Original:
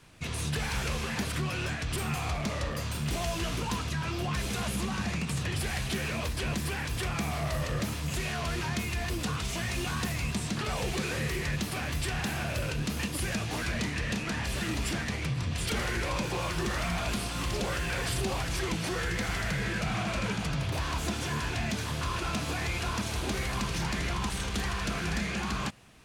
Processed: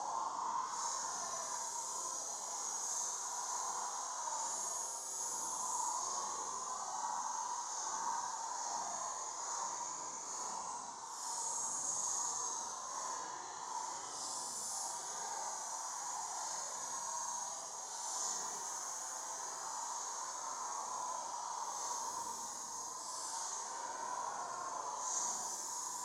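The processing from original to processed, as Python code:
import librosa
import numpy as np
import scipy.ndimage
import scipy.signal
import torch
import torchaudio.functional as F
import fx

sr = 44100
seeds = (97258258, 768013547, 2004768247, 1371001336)

y = fx.spec_clip(x, sr, under_db=18)
y = fx.paulstretch(y, sr, seeds[0], factor=11.0, window_s=0.05, from_s=4.27)
y = fx.double_bandpass(y, sr, hz=2500.0, octaves=2.8)
y = y * 10.0 ** (2.0 / 20.0)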